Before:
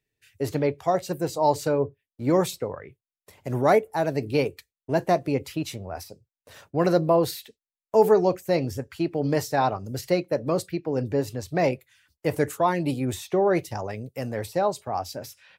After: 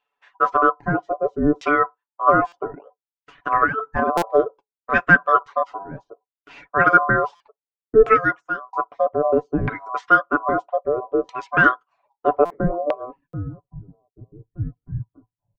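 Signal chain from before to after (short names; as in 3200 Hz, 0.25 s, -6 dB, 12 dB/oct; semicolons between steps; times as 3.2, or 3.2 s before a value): 3.51–4.25 negative-ratio compressor -22 dBFS, ratio -0.5; 8.02–8.73 fade out; reverb removal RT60 0.84 s; ring modulator 880 Hz; low-pass sweep 6700 Hz -> 110 Hz, 12.02–13.51; comb 7 ms, depth 63%; LFO low-pass saw down 0.62 Hz 350–2600 Hz; stuck buffer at 2.47/4.17/7.35/12.45/13.28, samples 256, times 8; gain +4 dB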